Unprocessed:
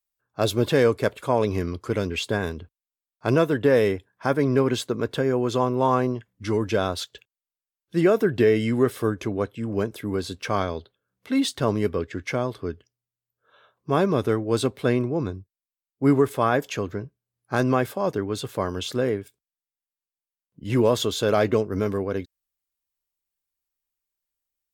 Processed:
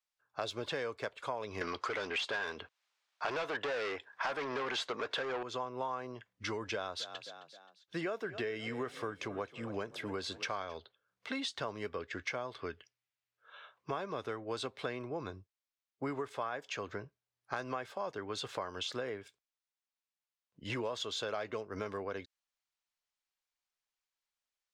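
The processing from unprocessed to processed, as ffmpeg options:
-filter_complex "[0:a]asettb=1/sr,asplit=3[s0][s1][s2];[s0]atrim=end=1.614[s3];[s1]atrim=start=1.61:end=5.43,asetpts=PTS-STARTPTS,afade=t=in:d=0.004:c=qsin,afade=t=out:st=3.816:d=0.004:c=qsin,asplit=2[s4][s5];[s5]highpass=f=720:p=1,volume=20,asoftclip=type=tanh:threshold=0.422[s6];[s4][s6]amix=inputs=2:normalize=0,lowpass=f=3600:p=1,volume=0.501[s7];[s2]atrim=start=5.426[s8];[s3][s7]acrossfade=d=0.004:c1=hsin:c2=qsin[s9];[s9][s8]acrossfade=d=0.004:c1=qsin:c2=hsin,asettb=1/sr,asplit=3[s10][s11][s12];[s10]atrim=end=6.734[s13];[s11]atrim=start=6.73:end=10.77,asetpts=PTS-STARTPTS,afade=t=in:d=0.004:c=qsin,afade=t=out:st=4.036:d=0.004:c=qsin,asplit=4[s14][s15][s16][s17];[s15]adelay=264,afreqshift=32,volume=0.119[s18];[s16]adelay=528,afreqshift=64,volume=0.0473[s19];[s17]adelay=792,afreqshift=96,volume=0.0191[s20];[s14][s18][s19][s20]amix=inputs=4:normalize=0,atrim=end_sample=178164[s21];[s12]atrim=start=10.766[s22];[s13][s21]acrossfade=d=0.004:c1=hsin:c2=qsin[s23];[s23][s22]acrossfade=d=0.004:c1=qsin:c2=hsin,asettb=1/sr,asplit=3[s24][s25][s26];[s24]atrim=end=12.554[s27];[s25]atrim=start=12.55:end=13.91,asetpts=PTS-STARTPTS,afade=t=in:d=0.004:c=qsin,afade=t=out:st=1.356:d=0.004:c=qsin,equalizer=f=2300:t=o:w=1.1:g=6.5[s28];[s26]atrim=start=13.906[s29];[s27][s28]acrossfade=d=0.004:c1=hsin:c2=qsin[s30];[s30][s29]acrossfade=d=0.004:c1=qsin:c2=hsin,acrossover=split=560 7000:gain=0.2 1 0.0708[s31][s32][s33];[s31][s32][s33]amix=inputs=3:normalize=0,acompressor=threshold=0.0141:ratio=6,volume=1.19"

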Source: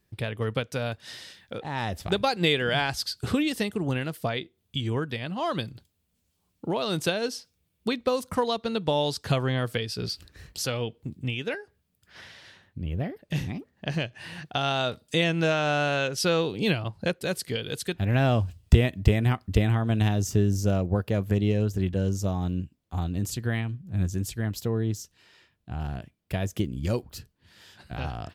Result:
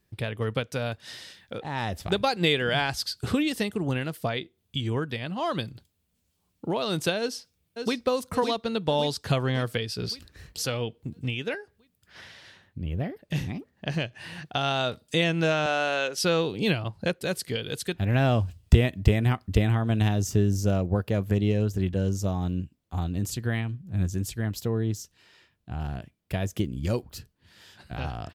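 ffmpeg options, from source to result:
-filter_complex "[0:a]asplit=2[s0][s1];[s1]afade=t=in:st=7.2:d=0.01,afade=t=out:st=8.04:d=0.01,aecho=0:1:560|1120|1680|2240|2800|3360|3920:0.501187|0.275653|0.151609|0.083385|0.0458618|0.025224|0.0138732[s2];[s0][s2]amix=inputs=2:normalize=0,asettb=1/sr,asplit=3[s3][s4][s5];[s3]atrim=end=15.664[s6];[s4]atrim=start=15.66:end=16.18,asetpts=PTS-STARTPTS,afade=t=in:d=0.004:c=qsin,afade=t=out:st=0.516:d=0.004:c=qsin,highpass=330[s7];[s5]atrim=start=16.176[s8];[s6][s7]acrossfade=d=0.004:c1=hsin:c2=qsin[s9];[s9][s8]acrossfade=d=0.004:c1=qsin:c2=hsin"

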